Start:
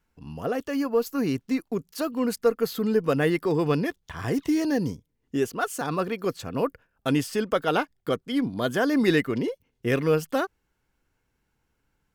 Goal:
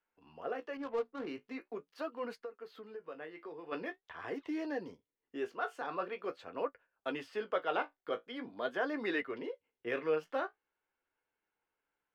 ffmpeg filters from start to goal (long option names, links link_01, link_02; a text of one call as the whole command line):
ffmpeg -i in.wav -filter_complex "[0:a]flanger=delay=9.6:depth=9.5:regen=-40:speed=0.44:shape=sinusoidal,asplit=3[link_01][link_02][link_03];[link_01]afade=type=out:start_time=2.41:duration=0.02[link_04];[link_02]acompressor=threshold=-35dB:ratio=12,afade=type=in:start_time=2.41:duration=0.02,afade=type=out:start_time=3.71:duration=0.02[link_05];[link_03]afade=type=in:start_time=3.71:duration=0.02[link_06];[link_04][link_05][link_06]amix=inputs=3:normalize=0,acrossover=split=350 3600:gain=0.0794 1 0.0631[link_07][link_08][link_09];[link_07][link_08][link_09]amix=inputs=3:normalize=0,asettb=1/sr,asplit=3[link_10][link_11][link_12];[link_10]atrim=end=0.774[link_13];[link_11]atrim=start=0.77:end=1.27,asetpts=PTS-STARTPTS,afade=type=in:duration=0.004:curve=qsin,afade=type=out:start_time=0.496:duration=0.004:curve=qsin,adynamicsmooth=sensitivity=5.5:basefreq=500[link_14];[link_12]atrim=start=1.266[link_15];[link_13][link_14]acrossfade=duration=0.004:curve1=hsin:curve2=qsin[link_16];[link_16][link_15]acrossfade=duration=0.004:curve1=qsin:curve2=hsin,volume=-4.5dB" out.wav